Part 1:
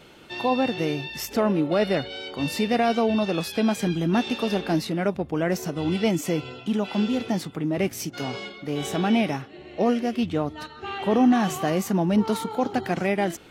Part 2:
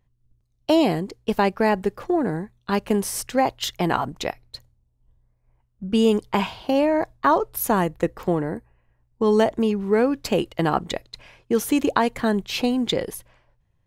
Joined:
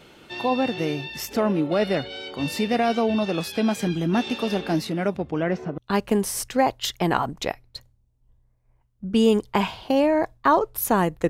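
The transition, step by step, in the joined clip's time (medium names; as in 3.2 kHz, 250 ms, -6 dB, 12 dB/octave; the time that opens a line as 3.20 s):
part 1
5.16–5.78 s: low-pass 12 kHz -> 1.1 kHz
5.78 s: go over to part 2 from 2.57 s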